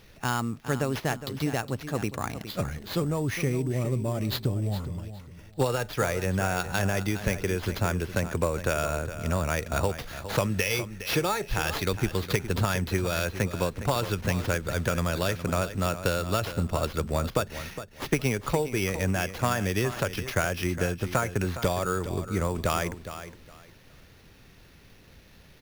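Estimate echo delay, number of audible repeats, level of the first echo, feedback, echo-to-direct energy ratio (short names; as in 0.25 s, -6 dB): 0.412 s, 2, -12.0 dB, 22%, -12.0 dB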